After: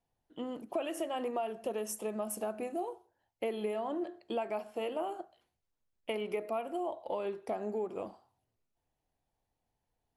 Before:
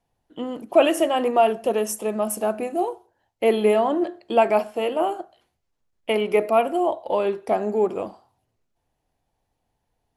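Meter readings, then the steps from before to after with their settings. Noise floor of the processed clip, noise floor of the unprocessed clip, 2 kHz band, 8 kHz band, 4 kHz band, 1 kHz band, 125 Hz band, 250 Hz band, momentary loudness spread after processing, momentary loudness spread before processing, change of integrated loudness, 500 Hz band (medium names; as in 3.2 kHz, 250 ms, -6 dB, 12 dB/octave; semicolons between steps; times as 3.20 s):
-85 dBFS, -76 dBFS, -15.5 dB, -11.0 dB, -14.5 dB, -15.5 dB, no reading, -13.5 dB, 8 LU, 12 LU, -15.0 dB, -15.0 dB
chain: compression 6:1, threshold -23 dBFS, peak gain reduction 12.5 dB; trim -9 dB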